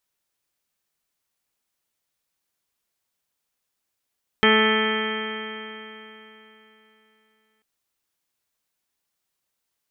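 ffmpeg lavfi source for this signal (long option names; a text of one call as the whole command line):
ffmpeg -f lavfi -i "aevalsrc='0.0944*pow(10,-3*t/3.43)*sin(2*PI*217.04*t)+0.119*pow(10,-3*t/3.43)*sin(2*PI*434.36*t)+0.0237*pow(10,-3*t/3.43)*sin(2*PI*652.2*t)+0.0531*pow(10,-3*t/3.43)*sin(2*PI*870.84*t)+0.0224*pow(10,-3*t/3.43)*sin(2*PI*1090.55*t)+0.0841*pow(10,-3*t/3.43)*sin(2*PI*1311.57*t)+0.0211*pow(10,-3*t/3.43)*sin(2*PI*1534.18*t)+0.1*pow(10,-3*t/3.43)*sin(2*PI*1758.63*t)+0.0596*pow(10,-3*t/3.43)*sin(2*PI*1985.16*t)+0.0562*pow(10,-3*t/3.43)*sin(2*PI*2214.04*t)+0.0398*pow(10,-3*t/3.43)*sin(2*PI*2445.49*t)+0.0133*pow(10,-3*t/3.43)*sin(2*PI*2679.77*t)+0.0119*pow(10,-3*t/3.43)*sin(2*PI*2917.1*t)+0.0891*pow(10,-3*t/3.43)*sin(2*PI*3157.71*t)':duration=3.19:sample_rate=44100" out.wav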